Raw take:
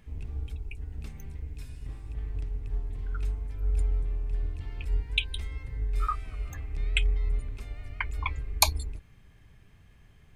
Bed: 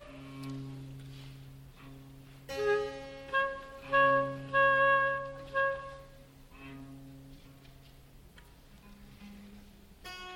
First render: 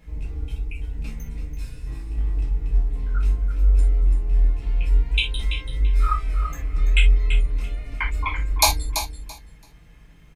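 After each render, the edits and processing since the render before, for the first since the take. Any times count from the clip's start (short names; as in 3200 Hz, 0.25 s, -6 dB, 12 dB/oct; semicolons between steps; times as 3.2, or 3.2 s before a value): on a send: feedback echo 0.335 s, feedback 18%, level -9 dB; on the sum: non-linear reverb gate 0.1 s falling, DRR -5.5 dB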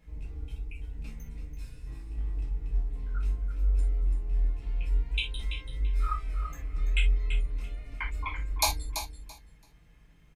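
gain -9 dB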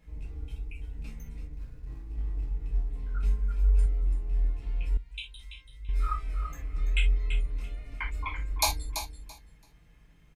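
1.47–2.6 median filter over 15 samples; 3.23–3.86 comb 5 ms, depth 93%; 4.97–5.89 passive tone stack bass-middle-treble 5-5-5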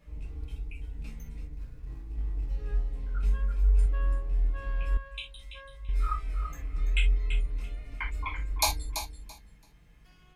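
add bed -20 dB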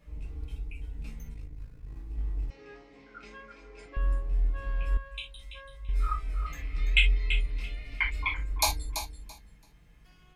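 1.34–1.96 AM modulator 53 Hz, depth 45%; 2.5–3.97 speaker cabinet 300–6500 Hz, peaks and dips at 300 Hz +4 dB, 2200 Hz +8 dB, 5100 Hz +4 dB; 6.46–8.34 band shelf 3100 Hz +9.5 dB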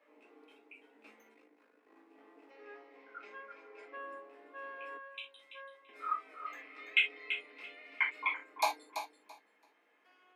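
steep high-pass 240 Hz 48 dB/oct; three-band isolator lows -17 dB, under 350 Hz, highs -16 dB, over 2700 Hz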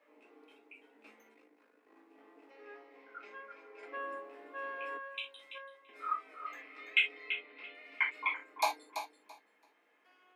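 3.83–5.58 gain +4.5 dB; 7.3–7.75 LPF 4200 Hz 24 dB/oct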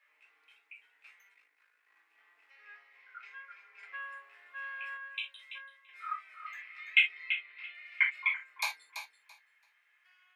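resonant high-pass 1800 Hz, resonance Q 1.7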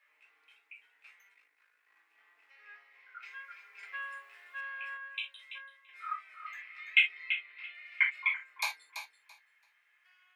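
3.22–4.61 high shelf 3100 Hz +9 dB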